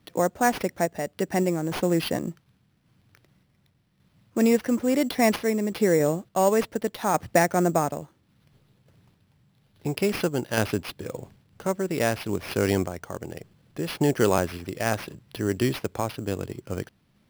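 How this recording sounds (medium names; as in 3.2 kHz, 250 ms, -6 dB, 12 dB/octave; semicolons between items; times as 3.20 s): a quantiser's noise floor 12-bit, dither none; random-step tremolo; aliases and images of a low sample rate 7.6 kHz, jitter 0%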